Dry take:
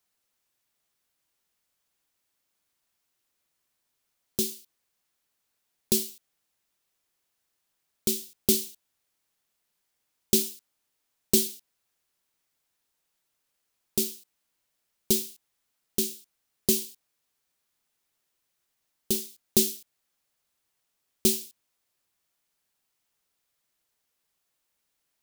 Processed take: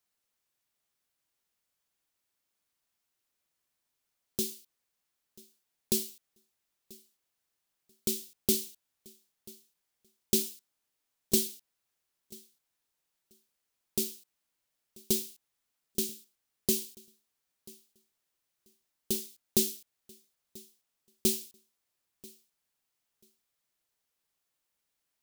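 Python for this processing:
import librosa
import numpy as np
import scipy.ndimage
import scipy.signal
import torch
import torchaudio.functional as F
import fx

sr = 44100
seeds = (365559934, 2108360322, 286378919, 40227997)

y = fx.echo_feedback(x, sr, ms=987, feedback_pct=17, wet_db=-23)
y = y * 10.0 ** (-4.5 / 20.0)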